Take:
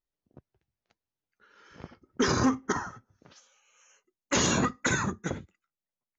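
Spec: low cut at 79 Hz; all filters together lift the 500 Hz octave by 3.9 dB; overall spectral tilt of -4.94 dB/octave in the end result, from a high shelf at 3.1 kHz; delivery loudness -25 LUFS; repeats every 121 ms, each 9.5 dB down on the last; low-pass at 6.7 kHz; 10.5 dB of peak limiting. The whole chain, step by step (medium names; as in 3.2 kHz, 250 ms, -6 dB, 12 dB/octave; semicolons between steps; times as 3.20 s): high-pass 79 Hz; low-pass 6.7 kHz; peaking EQ 500 Hz +5 dB; treble shelf 3.1 kHz -5 dB; peak limiter -23 dBFS; feedback delay 121 ms, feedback 33%, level -9.5 dB; trim +9 dB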